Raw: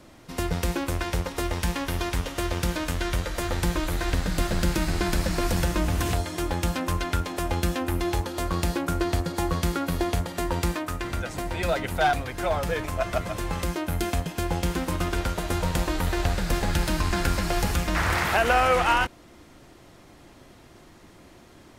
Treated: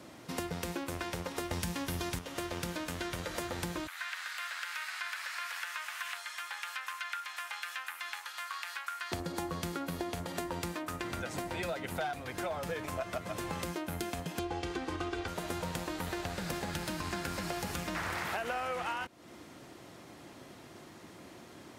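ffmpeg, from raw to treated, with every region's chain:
-filter_complex "[0:a]asettb=1/sr,asplit=3[a][b][c];[a]atrim=end=1.514[d];[b]atrim=start=1.51:end=2.19,asetpts=PTS-STARTPTS,afade=t=in:d=0.004:c=qsin,afade=t=out:st=0.676:d=0.004:c=qsin,bass=f=250:g=7,treble=f=4k:g=5,acontrast=26[e];[c]atrim=start=2.186[f];[d][e]acrossfade=d=0.004:c1=hsin:c2=qsin[g];[g][f]acrossfade=d=0.004:c1=qsin:c2=hsin,asettb=1/sr,asplit=3[h][i][j];[h]atrim=end=3.874[k];[i]atrim=start=3.87:end=9.12,asetpts=PTS-STARTPTS,afade=t=in:d=0.004:c=qsin,afade=t=out:st=5.246:d=0.004:c=qsin,highpass=f=1.3k:w=0.5412,highpass=f=1.3k:w=1.3066,acrossover=split=2900[l][m];[m]acompressor=threshold=-47dB:ratio=4:attack=1:release=60[n];[l][n]amix=inputs=2:normalize=0[o];[j]atrim=start=9.116[p];[k][o]acrossfade=d=0.004:c1=hsin:c2=qsin[q];[q][p]acrossfade=d=0.004:c1=qsin:c2=hsin,asettb=1/sr,asplit=3[r][s][t];[r]atrim=end=14.394[u];[s]atrim=start=14.39:end=15.28,asetpts=PTS-STARTPTS,afade=t=in:d=0.004:c=qsin,afade=t=out:st=0.886:d=0.004:c=qsin,lowpass=5.3k,aecho=1:1:2.6:0.84,atrim=end_sample=39249[v];[t]atrim=start=15.276[w];[u][v]acrossfade=d=0.004:c1=hsin:c2=qsin[x];[x][w]acrossfade=d=0.004:c1=qsin:c2=hsin,highpass=120,acompressor=threshold=-34dB:ratio=6"

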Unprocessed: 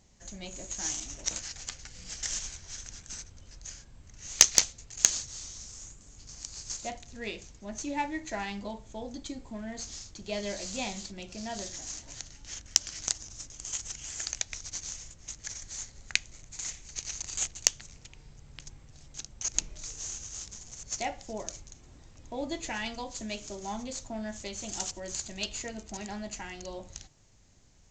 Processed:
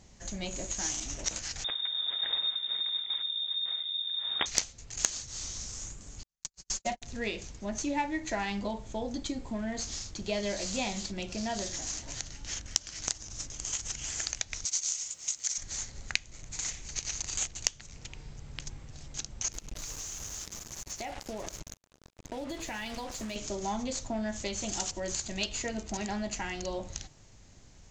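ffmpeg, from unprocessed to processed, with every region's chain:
-filter_complex "[0:a]asettb=1/sr,asplit=3[a][b][c];[a]atrim=end=1.644[d];[b]atrim=start=1.64:end=4.46,asetpts=PTS-STARTPTS,afade=t=in:d=0.004:c=qsin,afade=t=out:st=2.816:d=0.004:c=qsin,lowshelf=f=420:t=q:w=1.5:g=12.5,aeval=exprs='(mod(2.24*val(0)+1,2)-1)/2.24':c=same,lowpass=f=3.1k:t=q:w=0.5098,lowpass=f=3.1k:t=q:w=0.6013,lowpass=f=3.1k:t=q:w=0.9,lowpass=f=3.1k:t=q:w=2.563,afreqshift=-3700[e];[c]atrim=start=4.456[f];[d][e]acrossfade=d=0.004:c1=hsin:c2=qsin[g];[g][f]acrossfade=d=0.004:c1=qsin:c2=hsin,asettb=1/sr,asplit=3[h][i][j];[h]atrim=end=6.234[k];[i]atrim=start=6.23:end=7.02,asetpts=PTS-STARTPTS,afade=t=in:d=0.004:c=qsin,afade=t=out:st=0.786:d=0.004:c=qsin,agate=range=-59dB:threshold=-40dB:ratio=16:release=100:detection=peak,aecho=1:1:5.3:0.92,atrim=end_sample=34839[l];[j]atrim=start=7.016[m];[k][l]acrossfade=d=0.004:c1=hsin:c2=qsin[n];[n][m]acrossfade=d=0.004:c1=qsin:c2=hsin,asettb=1/sr,asplit=3[o][p][q];[o]atrim=end=14.654[r];[p]atrim=start=14.65:end=15.58,asetpts=PTS-STARTPTS,afade=t=in:d=0.004:c=qsin,afade=t=out:st=0.926:d=0.004:c=qsin,highpass=f=810:p=1,aemphasis=mode=production:type=75fm,bandreject=f=1.7k:w=11[s];[q]atrim=start=15.576[t];[r][s]acrossfade=d=0.004:c1=hsin:c2=qsin[u];[u][t]acrossfade=d=0.004:c1=qsin:c2=hsin,asettb=1/sr,asplit=3[v][w][x];[v]atrim=end=19.524[y];[w]atrim=start=19.52:end=23.36,asetpts=PTS-STARTPTS,afade=t=in:d=0.004:c=qsin,afade=t=out:st=3.836:d=0.004:c=qsin,aecho=1:1:101:0.0668,atrim=end_sample=169344,acrusher=bits=6:mix=0:aa=0.5,acompressor=threshold=-40dB:ratio=8:attack=3.2:release=140:knee=1:detection=peak[z];[x]atrim=start=23.356[aa];[y][z]acrossfade=d=0.004:c1=hsin:c2=qsin[ab];[ab][aa]acrossfade=d=0.004:c1=qsin:c2=hsin,acompressor=threshold=-38dB:ratio=2,highshelf=f=11k:g=-9.5,volume=6.5dB"

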